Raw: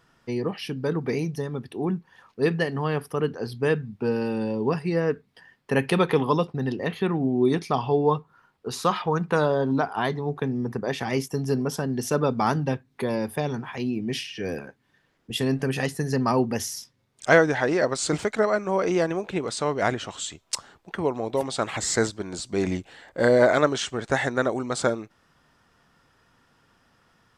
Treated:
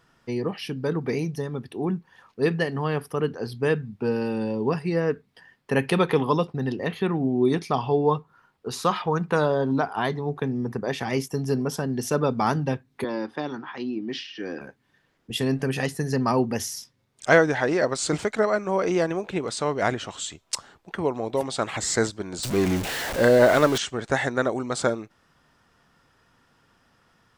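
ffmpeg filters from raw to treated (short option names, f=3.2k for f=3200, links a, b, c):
-filter_complex "[0:a]asettb=1/sr,asplit=3[a][b][c];[a]atrim=end=13.044[d];[b]atrim=start=13.04:end=14.61,asetpts=PTS-STARTPTS,afade=t=in:d=0.004:c=qsin,afade=t=out:st=1.566:d=0.004:c=qsin,highpass=280,equalizer=f=310:t=q:w=4:g=7,equalizer=f=440:t=q:w=4:g=-6,equalizer=f=650:t=q:w=4:g=-5,equalizer=f=1.3k:t=q:w=4:g=4,equalizer=f=2.4k:t=q:w=4:g=-7,lowpass=f=4.9k:w=0.5412,lowpass=f=4.9k:w=1.3066[e];[c]atrim=start=14.606[f];[d][e]acrossfade=d=0.004:c1=hsin:c2=qsin[g];[g][f]acrossfade=d=0.004:c1=qsin:c2=hsin,asettb=1/sr,asplit=3[h][i][j];[h]atrim=end=22.434[k];[i]atrim=start=22.43:end=23.78,asetpts=PTS-STARTPTS,afade=t=in:d=0.004:c=qsin,afade=t=out:st=1.346:d=0.004:c=qsin,aeval=exprs='val(0)+0.5*0.0596*sgn(val(0))':c=same[l];[j]atrim=start=23.776[m];[k][l]acrossfade=d=0.004:c1=hsin:c2=qsin[n];[n][m]acrossfade=d=0.004:c1=qsin:c2=hsin"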